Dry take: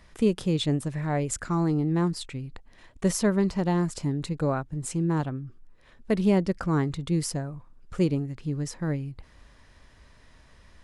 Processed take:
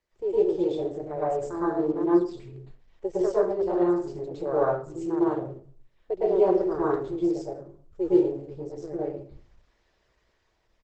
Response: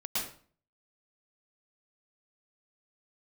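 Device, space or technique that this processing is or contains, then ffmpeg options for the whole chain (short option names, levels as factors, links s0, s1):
speakerphone in a meeting room: -filter_complex "[0:a]afwtdn=0.0355,aemphasis=mode=production:type=75fm,asettb=1/sr,asplit=3[s0][s1][s2];[s0]atrim=end=1.054[s3];[s1]atrim=start=1.05:end=1.96,asetpts=PTS-STARTPTS,afade=t=in:d=0.004:c=qsin,afade=t=out:st=0.906:d=0.004:c=qsin,agate=range=0.0224:threshold=0.00708:ratio=3:detection=peak[s4];[s2]atrim=start=1.956[s5];[s3][s4]acrossfade=d=0.004:c1=hsin:c2=qsin[s6];[s6][s5]acrossfade=d=0.004:c1=qsin:c2=hsin,firequalizer=gain_entry='entry(110,0);entry(230,-28);entry(340,12);entry(940,4);entry(10000,-12)':delay=0.05:min_phase=1[s7];[1:a]atrim=start_sample=2205[s8];[s7][s8]afir=irnorm=-1:irlink=0,dynaudnorm=f=280:g=7:m=2,volume=0.376" -ar 48000 -c:a libopus -b:a 12k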